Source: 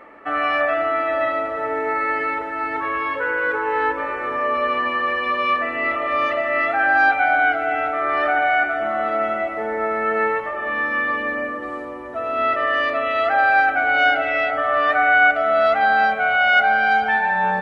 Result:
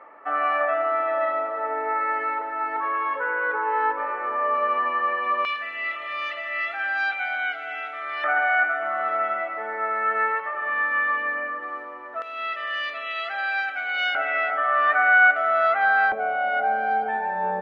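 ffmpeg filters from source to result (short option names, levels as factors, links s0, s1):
-af "asetnsamples=n=441:p=0,asendcmd='5.45 bandpass f 3600;8.24 bandpass f 1400;12.22 bandpass f 3700;14.15 bandpass f 1400;16.12 bandpass f 460',bandpass=f=970:t=q:w=1.2:csg=0"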